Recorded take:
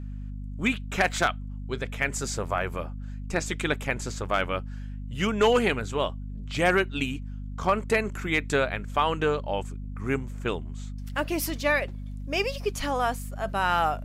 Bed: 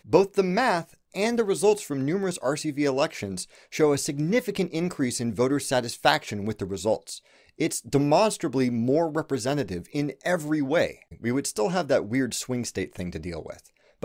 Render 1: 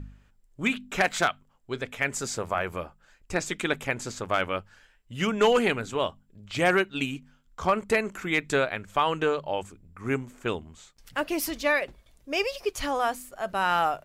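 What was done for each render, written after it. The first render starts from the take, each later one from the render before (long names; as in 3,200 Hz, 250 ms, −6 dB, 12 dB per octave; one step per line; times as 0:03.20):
hum removal 50 Hz, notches 5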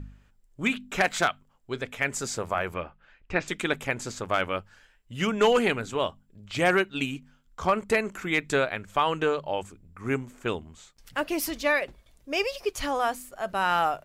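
0:02.74–0:03.48: low-pass with resonance 2,700 Hz, resonance Q 1.6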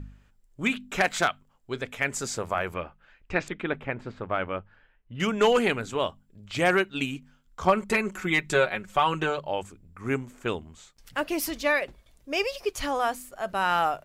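0:03.48–0:05.20: high-frequency loss of the air 460 metres
0:07.66–0:09.39: comb filter 5.4 ms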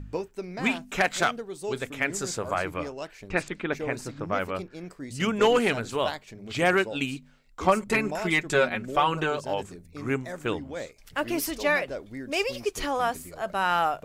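mix in bed −13 dB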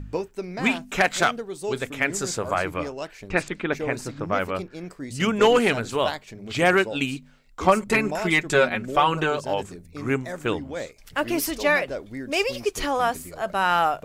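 level +3.5 dB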